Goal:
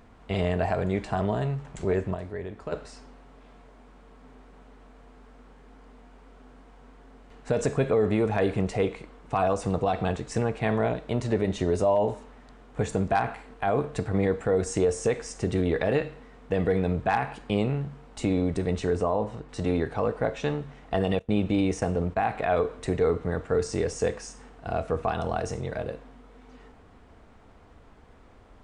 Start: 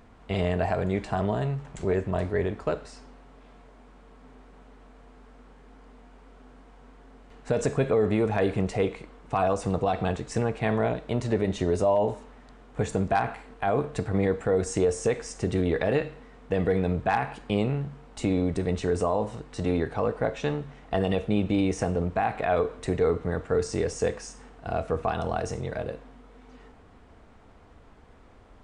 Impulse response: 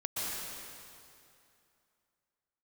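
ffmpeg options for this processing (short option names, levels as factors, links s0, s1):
-filter_complex "[0:a]asplit=3[s0][s1][s2];[s0]afade=t=out:st=2.13:d=0.02[s3];[s1]acompressor=threshold=0.0112:ratio=2,afade=t=in:st=2.13:d=0.02,afade=t=out:st=2.71:d=0.02[s4];[s2]afade=t=in:st=2.71:d=0.02[s5];[s3][s4][s5]amix=inputs=3:normalize=0,asettb=1/sr,asplit=3[s6][s7][s8];[s6]atrim=end=18.954[s9];[s7]atrim=start=18.95:end=19.49,asetpts=PTS-STARTPTS,afade=t=in:d=0.004:c=qsin,afade=t=out:st=0.536:d=0.004:c=qsin,lowpass=f=2800:p=1[s10];[s8]atrim=start=19.486[s11];[s9][s10]acrossfade=d=0.004:c1=hsin:c2=qsin[s12];[s12][s11]acrossfade=d=0.004:c1=qsin:c2=hsin,asettb=1/sr,asplit=3[s13][s14][s15];[s13]atrim=end=21.194[s16];[s14]atrim=start=21.19:end=22.21,asetpts=PTS-STARTPTS,afade=t=in:d=0.004:c=qsin,afade=t=out:st=1.016:d=0.004:c=qsin,agate=range=0.0794:threshold=0.0251:ratio=16:detection=peak[s17];[s15]atrim=start=22.206[s18];[s16][s17]acrossfade=d=0.004:c1=hsin:c2=qsin[s19];[s19][s18]acrossfade=d=0.004:c1=qsin:c2=hsin"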